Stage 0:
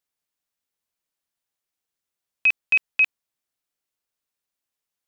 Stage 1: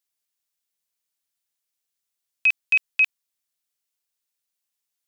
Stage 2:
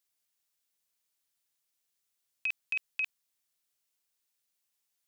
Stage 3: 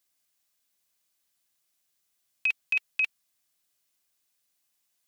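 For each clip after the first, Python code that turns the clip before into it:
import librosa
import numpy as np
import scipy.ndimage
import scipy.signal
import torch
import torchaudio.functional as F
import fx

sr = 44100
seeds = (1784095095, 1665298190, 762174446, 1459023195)

y1 = fx.high_shelf(x, sr, hz=2200.0, db=11.0)
y1 = F.gain(torch.from_numpy(y1), -6.5).numpy()
y2 = fx.over_compress(y1, sr, threshold_db=-24.0, ratio=-1.0)
y2 = F.gain(torch.from_numpy(y2), -6.5).numpy()
y3 = fx.notch_comb(y2, sr, f0_hz=460.0)
y3 = F.gain(torch.from_numpy(y3), 6.5).numpy()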